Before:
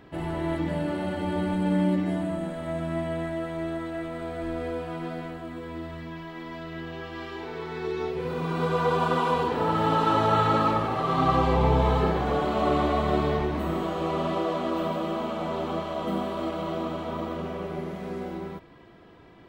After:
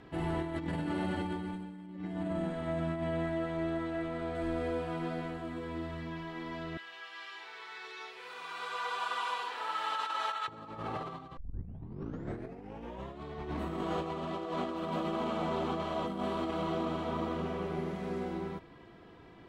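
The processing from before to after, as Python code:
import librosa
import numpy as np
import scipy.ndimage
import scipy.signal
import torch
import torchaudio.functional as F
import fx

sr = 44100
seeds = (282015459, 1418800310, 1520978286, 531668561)

y = fx.air_absorb(x, sr, metres=52.0, at=(1.86, 4.35))
y = fx.highpass(y, sr, hz=1400.0, slope=12, at=(6.77, 10.48))
y = fx.edit(y, sr, fx.tape_start(start_s=11.37, length_s=1.85), tone=tone)
y = scipy.signal.sosfilt(scipy.signal.butter(2, 11000.0, 'lowpass', fs=sr, output='sos'), y)
y = fx.notch(y, sr, hz=590.0, q=12.0)
y = fx.over_compress(y, sr, threshold_db=-30.0, ratio=-0.5)
y = y * librosa.db_to_amplitude(-5.0)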